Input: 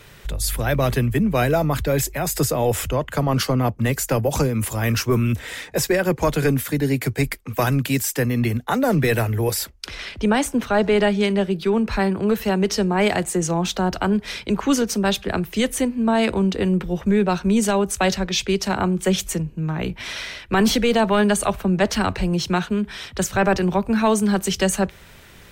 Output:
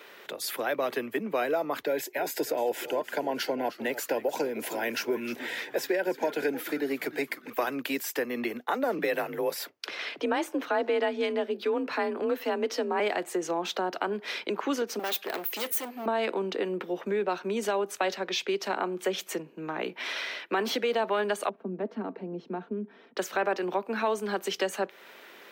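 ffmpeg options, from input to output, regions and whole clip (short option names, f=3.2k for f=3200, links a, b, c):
-filter_complex "[0:a]asettb=1/sr,asplit=3[a][b][c];[a]atrim=end=1.874[d];[b]atrim=start=1.87:end=7.5,asetpts=PTS-STARTPTS,afade=t=in:d=0.004:c=qsin,afade=t=out:st=5.626:d=0.004:c=qsin,asuperstop=centerf=1200:order=20:qfactor=4,asplit=5[e][f][g][h][i];[f]adelay=306,afreqshift=-130,volume=-14.5dB[j];[g]adelay=612,afreqshift=-260,volume=-20.9dB[k];[h]adelay=918,afreqshift=-390,volume=-27.3dB[l];[i]adelay=1224,afreqshift=-520,volume=-33.6dB[m];[e][j][k][l][m]amix=inputs=5:normalize=0,atrim=end_sample=248283[n];[c]atrim=start=7.496[o];[d][n]acrossfade=d=0.004:c1=hsin:c2=qsin[p];[p][o]acrossfade=d=0.004:c1=qsin:c2=hsin,asettb=1/sr,asplit=3[q][r][s];[q]atrim=end=8.984[t];[r]atrim=start=8.98:end=13,asetpts=PTS-STARTPTS,afade=t=in:d=0.004:c=qsin,afade=t=out:st=4.016:d=0.004:c=qsin,highpass=47,afreqshift=41[u];[s]atrim=start=12.996[v];[t][u]acrossfade=d=0.004:c1=hsin:c2=qsin[w];[w][v]acrossfade=d=0.004:c1=qsin:c2=hsin,asettb=1/sr,asplit=3[x][y][z];[x]atrim=end=14.994[aa];[y]atrim=start=14.99:end=16.06,asetpts=PTS-STARTPTS,afade=t=in:d=0.004:c=qsin,afade=t=out:st=1.066:d=0.004:c=qsin,volume=23.5dB,asoftclip=hard,volume=-23.5dB,aemphasis=mode=production:type=bsi,aeval=exprs='val(0)+0.00282*sin(2*PI*12000*n/s)':c=same[ab];[z]atrim=start=16.056[ac];[aa][ab]acrossfade=d=0.004:c1=hsin:c2=qsin[ad];[ad][ac]acrossfade=d=0.004:c1=qsin:c2=hsin,asettb=1/sr,asplit=3[ae][af][ag];[ae]atrim=end=21.494[ah];[af]atrim=start=21.49:end=23.17,asetpts=PTS-STARTPTS,afade=t=in:d=0.004:c=qsin,afade=t=out:st=1.676:d=0.004:c=qsin,bandpass=f=220:t=q:w=1.4,aecho=1:1:4.4:0.38,atrim=end_sample=74088[ai];[ag]atrim=start=23.166[aj];[ah][ai]acrossfade=d=0.004:c1=hsin:c2=qsin[ak];[ak][aj]acrossfade=d=0.004:c1=qsin:c2=hsin,highpass=f=310:w=0.5412,highpass=f=310:w=1.3066,equalizer=f=8.7k:w=0.74:g=-12.5,acompressor=threshold=-30dB:ratio=2"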